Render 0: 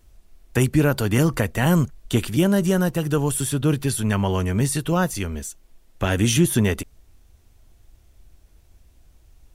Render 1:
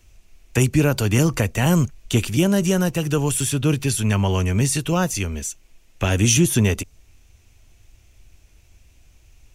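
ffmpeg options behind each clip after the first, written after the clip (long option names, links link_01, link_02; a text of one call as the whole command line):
ffmpeg -i in.wav -filter_complex "[0:a]equalizer=frequency=100:width_type=o:width=0.67:gain=4,equalizer=frequency=2500:width_type=o:width=0.67:gain=11,equalizer=frequency=6300:width_type=o:width=0.67:gain=8,acrossover=split=320|1500|3300[link_01][link_02][link_03][link_04];[link_03]acompressor=threshold=-38dB:ratio=6[link_05];[link_01][link_02][link_05][link_04]amix=inputs=4:normalize=0" out.wav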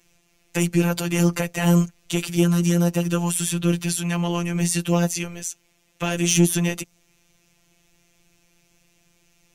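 ffmpeg -i in.wav -af "highpass=77,acontrast=58,afftfilt=real='hypot(re,im)*cos(PI*b)':imag='0':win_size=1024:overlap=0.75,volume=-4dB" out.wav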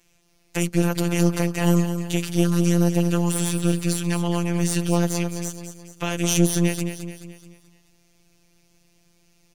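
ffmpeg -i in.wav -filter_complex "[0:a]aeval=exprs='if(lt(val(0),0),0.447*val(0),val(0))':channel_layout=same,asplit=2[link_01][link_02];[link_02]aecho=0:1:215|430|645|860|1075:0.355|0.167|0.0784|0.0368|0.0173[link_03];[link_01][link_03]amix=inputs=2:normalize=0,volume=-1dB" out.wav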